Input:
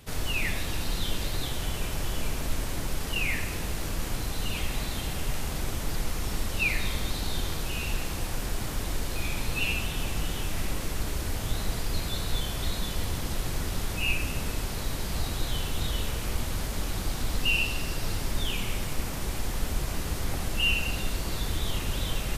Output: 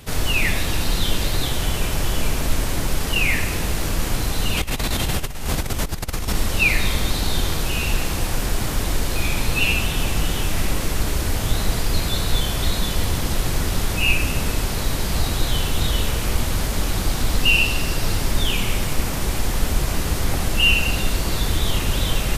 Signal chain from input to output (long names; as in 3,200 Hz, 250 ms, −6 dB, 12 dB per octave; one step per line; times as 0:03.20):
0:04.57–0:06.35: compressor whose output falls as the input rises −31 dBFS, ratio −0.5
level +9 dB